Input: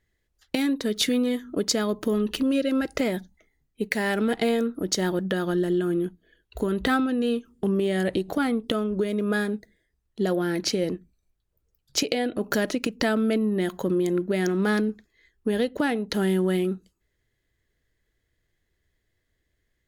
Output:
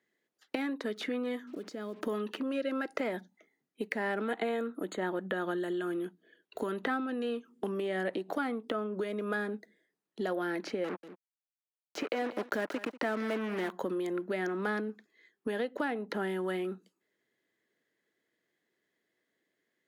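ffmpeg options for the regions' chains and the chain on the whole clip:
-filter_complex "[0:a]asettb=1/sr,asplit=3[s0][s1][s2];[s0]atrim=end=1.474[s3];[s1]atrim=start=1.47:end=2.01,asetpts=PTS-STARTPTS,afade=t=in:d=0.004:c=qsin,afade=t=out:st=0.536:d=0.004:c=qsin,equalizer=f=940:t=o:w=1:g=-3.5,acompressor=threshold=0.0224:ratio=12:attack=3.2:release=140:knee=1:detection=peak,acrusher=bits=8:mix=0:aa=0.5[s4];[s2]atrim=start=2.006[s5];[s3][s4]acrossfade=d=0.004:c1=hsin:c2=qsin[s6];[s6][s5]acrossfade=d=0.004:c1=qsin:c2=hsin,asettb=1/sr,asplit=3[s7][s8][s9];[s7]atrim=end=4.284[s10];[s8]atrim=start=4.28:end=5.87,asetpts=PTS-STARTPTS,afade=t=in:d=0.004:c=qsin,afade=t=out:st=1.586:d=0.004:c=qsin,asuperstop=centerf=5500:order=12:qfactor=2.4,equalizer=f=6200:t=o:w=0.23:g=14.5[s11];[s9]atrim=start=5.866[s12];[s10][s11]acrossfade=d=0.004:c1=hsin:c2=qsin[s13];[s13][s12]acrossfade=d=0.004:c1=qsin:c2=hsin,asettb=1/sr,asplit=3[s14][s15][s16];[s14]atrim=end=10.844[s17];[s15]atrim=start=10.84:end=13.71,asetpts=PTS-STARTPTS,afade=t=in:d=0.004:c=qsin,afade=t=out:st=2.866:d=0.004:c=qsin,acrusher=bits=4:mix=0:aa=0.5,aecho=1:1:190:0.126,atrim=end_sample=126567[s18];[s16]atrim=start=13.706[s19];[s17][s18]acrossfade=d=0.004:c1=hsin:c2=qsin[s20];[s20][s19]acrossfade=d=0.004:c1=qsin:c2=hsin,highpass=f=210:w=0.5412,highpass=f=210:w=1.3066,highshelf=f=3500:g=-7.5,acrossover=split=670|2200[s21][s22][s23];[s21]acompressor=threshold=0.0158:ratio=4[s24];[s22]acompressor=threshold=0.0224:ratio=4[s25];[s23]acompressor=threshold=0.00251:ratio=4[s26];[s24][s25][s26]amix=inputs=3:normalize=0"

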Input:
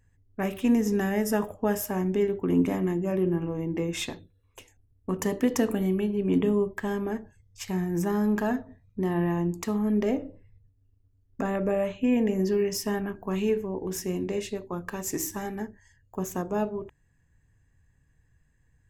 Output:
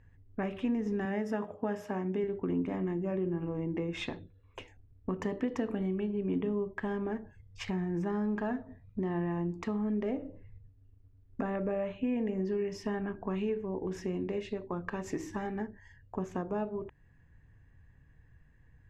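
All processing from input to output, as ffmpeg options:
-filter_complex "[0:a]asettb=1/sr,asplit=3[s0][s1][s2];[s0]atrim=end=1.054[s3];[s1]atrim=start=1.05:end=2.24,asetpts=PTS-STARTPTS,afade=t=in:d=0.004:c=qsin,afade=t=out:st=1.186:d=0.004:c=qsin,highpass=120,bandreject=f=60:t=h:w=6,bandreject=f=120:t=h:w=6,bandreject=f=180:t=h:w=6,bandreject=f=240:t=h:w=6,bandreject=f=300:t=h:w=6,bandreject=f=360:t=h:w=6,bandreject=f=420:t=h:w=6,bandreject=f=480:t=h:w=6,bandreject=f=540:t=h:w=6[s4];[s2]atrim=start=2.236[s5];[s3][s4]acrossfade=d=0.004:c1=hsin:c2=qsin[s6];[s6][s5]acrossfade=d=0.004:c1=qsin:c2=hsin,lowpass=2800,acompressor=threshold=0.00891:ratio=2.5,volume=1.78"

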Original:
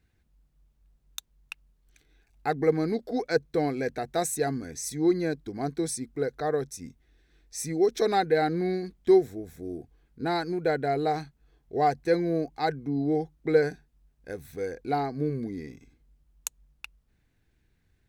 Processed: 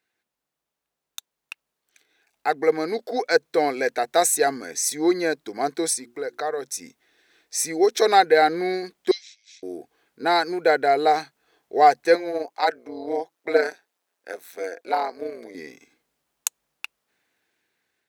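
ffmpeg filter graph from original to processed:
-filter_complex "[0:a]asettb=1/sr,asplit=3[s0][s1][s2];[s0]atrim=end=5.934[s3];[s1]atrim=start=5.93:end=6.64,asetpts=PTS-STARTPTS,afade=t=in:d=0.004:c=qsin,afade=t=out:st=0.706:d=0.004:c=qsin,bandreject=f=60:t=h:w=6,bandreject=f=120:t=h:w=6,bandreject=f=180:t=h:w=6,bandreject=f=240:t=h:w=6,bandreject=f=300:t=h:w=6,bandreject=f=360:t=h:w=6,acompressor=threshold=0.0158:ratio=2:attack=3.2:release=140:knee=1:detection=peak[s4];[s2]atrim=start=6.636[s5];[s3][s4]acrossfade=d=0.004:c1=hsin:c2=qsin[s6];[s6][s5]acrossfade=d=0.004:c1=qsin:c2=hsin,asettb=1/sr,asplit=3[s7][s8][s9];[s7]atrim=end=9.114[s10];[s8]atrim=start=9.11:end=9.63,asetpts=PTS-STARTPTS,afade=t=in:d=0.004:c=qsin,afade=t=out:st=0.516:d=0.004:c=qsin,acontrast=31,asuperpass=centerf=3900:order=8:qfactor=1[s11];[s9]atrim=start=9.626[s12];[s10][s11]acrossfade=d=0.004:c1=hsin:c2=qsin[s13];[s13][s12]acrossfade=d=0.004:c1=qsin:c2=hsin,asettb=1/sr,asplit=3[s14][s15][s16];[s14]atrim=end=12.154[s17];[s15]atrim=start=12.15:end=15.55,asetpts=PTS-STARTPTS,afade=t=in:d=0.004:c=qsin,afade=t=out:st=3.396:d=0.004:c=qsin,highpass=330,tremolo=f=180:d=0.75[s18];[s16]atrim=start=15.546[s19];[s17][s18]acrossfade=d=0.004:c1=hsin:c2=qsin[s20];[s20][s19]acrossfade=d=0.004:c1=qsin:c2=hsin,highpass=520,dynaudnorm=f=1000:g=5:m=3.76"

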